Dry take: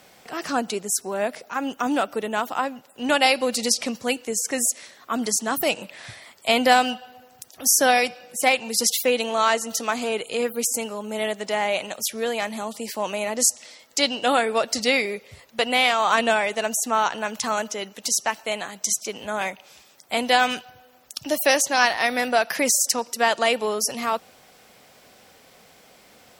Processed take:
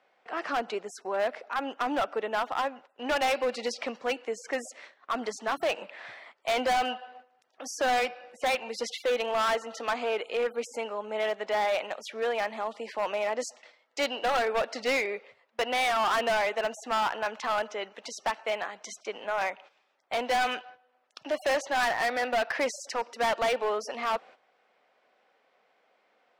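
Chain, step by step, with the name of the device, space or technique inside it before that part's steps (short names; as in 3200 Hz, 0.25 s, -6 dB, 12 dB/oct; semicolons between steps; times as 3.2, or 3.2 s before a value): walkie-talkie (BPF 460–2200 Hz; hard clip -23 dBFS, distortion -7 dB; gate -49 dBFS, range -12 dB)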